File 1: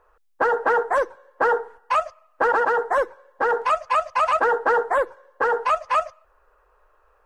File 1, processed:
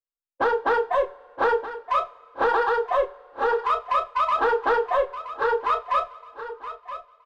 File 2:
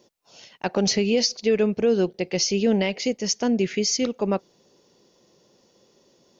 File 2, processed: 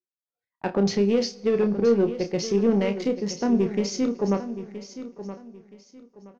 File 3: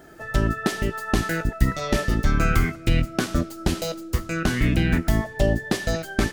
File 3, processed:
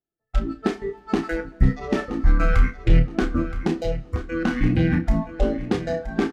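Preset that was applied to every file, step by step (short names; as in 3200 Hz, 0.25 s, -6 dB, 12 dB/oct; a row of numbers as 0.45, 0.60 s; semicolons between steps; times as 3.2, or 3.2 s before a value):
Wiener smoothing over 15 samples; spectral noise reduction 21 dB; notch 630 Hz, Q 12; gate with hold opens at -47 dBFS; high shelf 9300 Hz +6.5 dB; sample leveller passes 1; tape spacing loss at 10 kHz 21 dB; doubler 30 ms -8 dB; feedback echo 0.972 s, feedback 27%, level -12.5 dB; two-slope reverb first 0.33 s, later 2.4 s, from -18 dB, DRR 12 dB; match loudness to -24 LUFS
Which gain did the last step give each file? -1.0, -2.5, 0.0 dB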